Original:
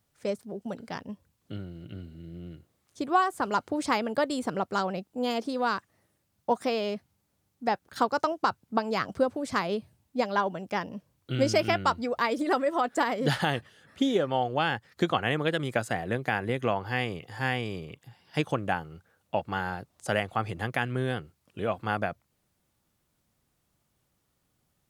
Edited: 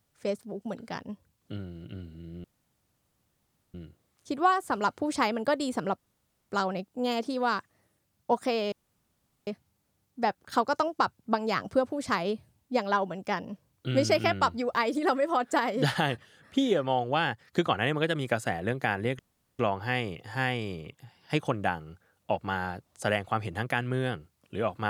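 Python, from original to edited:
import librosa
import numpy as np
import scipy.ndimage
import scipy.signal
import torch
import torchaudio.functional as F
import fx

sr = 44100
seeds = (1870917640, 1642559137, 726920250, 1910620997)

y = fx.edit(x, sr, fx.insert_room_tone(at_s=2.44, length_s=1.3),
    fx.insert_room_tone(at_s=4.68, length_s=0.51),
    fx.insert_room_tone(at_s=6.91, length_s=0.75),
    fx.insert_room_tone(at_s=16.63, length_s=0.4), tone=tone)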